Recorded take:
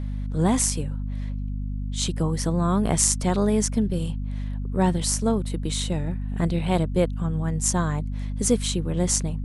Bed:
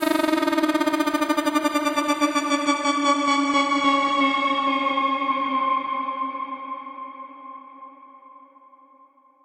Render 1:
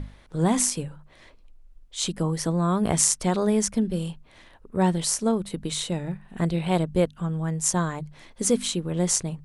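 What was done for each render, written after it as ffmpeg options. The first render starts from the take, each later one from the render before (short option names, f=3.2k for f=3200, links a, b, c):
-af "bandreject=f=50:t=h:w=6,bandreject=f=100:t=h:w=6,bandreject=f=150:t=h:w=6,bandreject=f=200:t=h:w=6,bandreject=f=250:t=h:w=6"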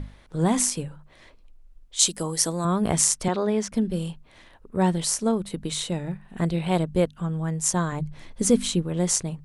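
-filter_complex "[0:a]asettb=1/sr,asplit=3[a][b][c];[a]atrim=end=1.994[d];[b]atrim=start=1.99:end=2.65,asetpts=PTS-STARTPTS,afade=t=in:d=0.004:c=qsin,afade=t=out:st=0.656:d=0.004:c=qsin,bass=f=250:g=-8,treble=f=4k:g=12[e];[c]atrim=start=2.646[f];[d][e]acrossfade=d=0.004:c1=hsin:c2=qsin[g];[g][f]acrossfade=d=0.004:c1=qsin:c2=hsin,asettb=1/sr,asplit=3[h][i][j];[h]atrim=end=3.284[k];[i]atrim=start=3.28:end=3.72,asetpts=PTS-STARTPTS,afade=t=in:d=0.004:c=qsin,afade=t=out:st=0.436:d=0.004:c=qsin,acrossover=split=190 5400:gain=0.224 1 0.158[l][m][n];[l][m][n]amix=inputs=3:normalize=0[o];[j]atrim=start=3.716[p];[k][o]acrossfade=d=0.004:c1=hsin:c2=qsin[q];[q][p]acrossfade=d=0.004:c1=qsin:c2=hsin,asettb=1/sr,asplit=3[r][s][t];[r]atrim=end=7.924[u];[s]atrim=start=7.92:end=8.83,asetpts=PTS-STARTPTS,afade=t=in:d=0.004:c=qsin,afade=t=out:st=0.906:d=0.004:c=qsin,lowshelf=f=200:g=10[v];[t]atrim=start=8.826[w];[u][v]acrossfade=d=0.004:c1=hsin:c2=qsin[x];[x][w]acrossfade=d=0.004:c1=qsin:c2=hsin"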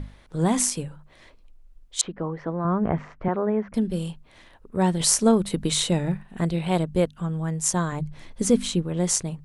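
-filter_complex "[0:a]asettb=1/sr,asplit=3[a][b][c];[a]atrim=end=2.014[d];[b]atrim=start=2.01:end=3.74,asetpts=PTS-STARTPTS,afade=t=in:d=0.004:c=qsin,afade=t=out:st=1.726:d=0.004:c=qsin,lowpass=f=1.9k:w=0.5412,lowpass=f=1.9k:w=1.3066[e];[c]atrim=start=3.736[f];[d][e]acrossfade=d=0.004:c1=hsin:c2=qsin[g];[g][f]acrossfade=d=0.004:c1=qsin:c2=hsin,asettb=1/sr,asplit=3[h][i][j];[h]atrim=end=5.004[k];[i]atrim=start=5:end=6.23,asetpts=PTS-STARTPTS,afade=t=in:d=0.004:c=qsin,afade=t=out:st=1.226:d=0.004:c=qsin,acontrast=40[l];[j]atrim=start=6.226[m];[k][l]acrossfade=d=0.004:c1=hsin:c2=qsin[n];[n][m]acrossfade=d=0.004:c1=qsin:c2=hsin,asettb=1/sr,asplit=3[o][p][q];[o]atrim=end=8.434[r];[p]atrim=start=8.43:end=9.04,asetpts=PTS-STARTPTS,afade=t=in:d=0.004:c=qsin,afade=t=out:st=0.606:d=0.004:c=qsin,highshelf=f=6.5k:g=-5[s];[q]atrim=start=9.036[t];[r][s]acrossfade=d=0.004:c1=hsin:c2=qsin[u];[u][t]acrossfade=d=0.004:c1=qsin:c2=hsin"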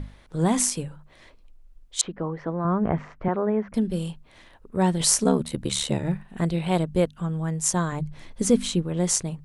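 -filter_complex "[0:a]asplit=3[a][b][c];[a]afade=t=out:st=5.24:d=0.02[d];[b]aeval=exprs='val(0)*sin(2*PI*36*n/s)':c=same,afade=t=in:st=5.24:d=0.02,afade=t=out:st=6.03:d=0.02[e];[c]afade=t=in:st=6.03:d=0.02[f];[d][e][f]amix=inputs=3:normalize=0"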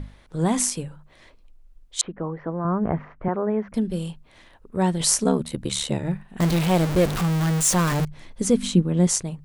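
-filter_complex "[0:a]asettb=1/sr,asplit=3[a][b][c];[a]atrim=end=2.014[d];[b]atrim=start=2.01:end=3.5,asetpts=PTS-STARTPTS,afade=t=in:d=0.004:c=qsin,afade=t=out:st=1.486:d=0.004:c=qsin,lowpass=2.3k[e];[c]atrim=start=3.496[f];[d][e]acrossfade=d=0.004:c1=hsin:c2=qsin[g];[g][f]acrossfade=d=0.004:c1=qsin:c2=hsin,asettb=1/sr,asplit=3[h][i][j];[h]atrim=end=6.404[k];[i]atrim=start=6.4:end=8.05,asetpts=PTS-STARTPTS,afade=t=in:d=0.004:c=qsin,afade=t=out:st=1.646:d=0.004:c=qsin,aeval=exprs='val(0)+0.5*0.0944*sgn(val(0))':c=same[l];[j]atrim=start=8.046[m];[k][l]acrossfade=d=0.004:c1=hsin:c2=qsin[n];[n][m]acrossfade=d=0.004:c1=qsin:c2=hsin,asettb=1/sr,asplit=3[o][p][q];[o]atrim=end=8.634[r];[p]atrim=start=8.63:end=9.07,asetpts=PTS-STARTPTS,afade=t=in:d=0.004:c=qsin,afade=t=out:st=0.436:d=0.004:c=qsin,equalizer=f=220:w=1.5:g=10.5[s];[q]atrim=start=9.066[t];[r][s]acrossfade=d=0.004:c1=hsin:c2=qsin[u];[u][t]acrossfade=d=0.004:c1=qsin:c2=hsin"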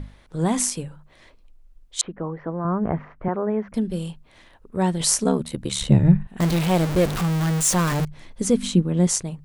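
-filter_complex "[0:a]asettb=1/sr,asplit=3[a][b][c];[a]atrim=end=5.814[d];[b]atrim=start=5.81:end=6.27,asetpts=PTS-STARTPTS,afade=t=in:d=0.004:c=qsin,afade=t=out:st=0.456:d=0.004:c=qsin,bass=f=250:g=15,treble=f=4k:g=-6[e];[c]atrim=start=6.266[f];[d][e]acrossfade=d=0.004:c1=hsin:c2=qsin[g];[g][f]acrossfade=d=0.004:c1=qsin:c2=hsin"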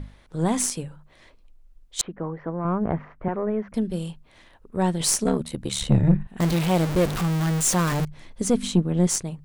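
-af "aeval=exprs='(tanh(3.16*val(0)+0.4)-tanh(0.4))/3.16':c=same"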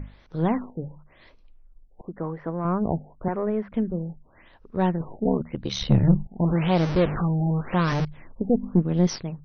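-af "afftfilt=real='re*lt(b*sr/1024,860*pow(6400/860,0.5+0.5*sin(2*PI*0.91*pts/sr)))':imag='im*lt(b*sr/1024,860*pow(6400/860,0.5+0.5*sin(2*PI*0.91*pts/sr)))':win_size=1024:overlap=0.75"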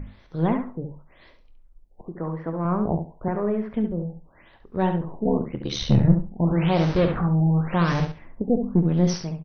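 -filter_complex "[0:a]asplit=2[a][b];[b]adelay=24,volume=-13dB[c];[a][c]amix=inputs=2:normalize=0,aecho=1:1:69|138|207:0.422|0.0759|0.0137"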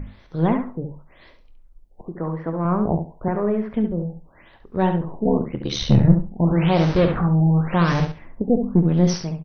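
-af "volume=3dB"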